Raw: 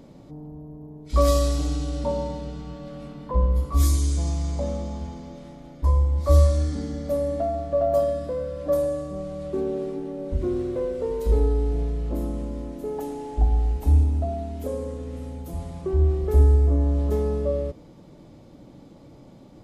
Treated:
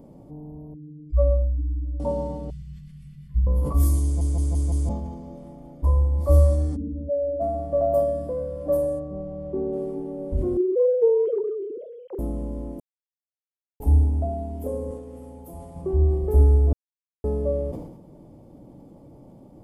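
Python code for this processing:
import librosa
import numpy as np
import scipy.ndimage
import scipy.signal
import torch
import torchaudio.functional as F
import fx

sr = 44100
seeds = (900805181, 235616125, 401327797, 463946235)

y = fx.spec_expand(x, sr, power=2.8, at=(0.74, 2.0))
y = fx.ellip_bandstop(y, sr, low_hz=150.0, high_hz=1900.0, order=3, stop_db=40, at=(2.5, 3.47))
y = fx.spec_expand(y, sr, power=2.5, at=(6.75, 7.4), fade=0.02)
y = fx.spacing_loss(y, sr, db_at_10k=24, at=(8.98, 9.72), fade=0.02)
y = fx.sine_speech(y, sr, at=(10.57, 12.19))
y = fx.low_shelf(y, sr, hz=230.0, db=-11.5, at=(14.91, 15.76))
y = fx.edit(y, sr, fx.stutter_over(start_s=4.04, slice_s=0.17, count=5),
    fx.silence(start_s=12.8, length_s=1.0),
    fx.silence(start_s=16.73, length_s=0.51), tone=tone)
y = fx.band_shelf(y, sr, hz=3000.0, db=-12.5, octaves=2.8)
y = fx.notch(y, sr, hz=3900.0, q=8.0)
y = fx.sustainer(y, sr, db_per_s=63.0)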